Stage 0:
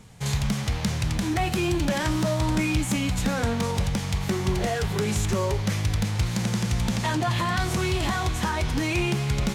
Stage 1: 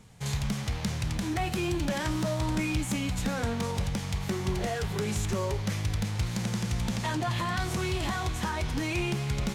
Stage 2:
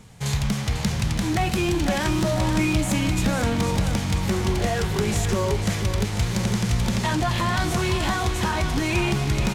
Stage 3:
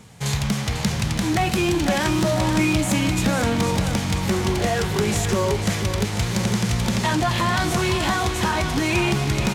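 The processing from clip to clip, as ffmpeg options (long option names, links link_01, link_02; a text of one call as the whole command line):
ffmpeg -i in.wav -af "aeval=exprs='0.211*(cos(1*acos(clip(val(0)/0.211,-1,1)))-cos(1*PI/2))+0.00473*(cos(4*acos(clip(val(0)/0.211,-1,1)))-cos(4*PI/2))':channel_layout=same,volume=-5dB" out.wav
ffmpeg -i in.wav -af "aecho=1:1:497|994|1491|1988|2485|2982|3479:0.355|0.213|0.128|0.0766|0.046|0.0276|0.0166,volume=6.5dB" out.wav
ffmpeg -i in.wav -af "highpass=frequency=100:poles=1,volume=3dB" out.wav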